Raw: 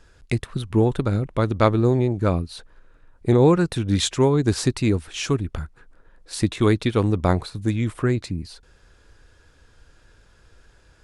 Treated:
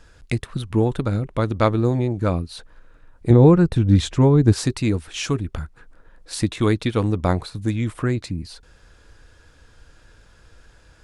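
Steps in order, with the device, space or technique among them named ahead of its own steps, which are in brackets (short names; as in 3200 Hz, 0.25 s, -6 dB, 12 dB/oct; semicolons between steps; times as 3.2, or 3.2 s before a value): notch 390 Hz, Q 12; 3.3–4.53 tilt -2.5 dB/oct; parallel compression (in parallel at -4 dB: compressor, threshold -35 dBFS, peak gain reduction 25.5 dB); on the sum: gain -1 dB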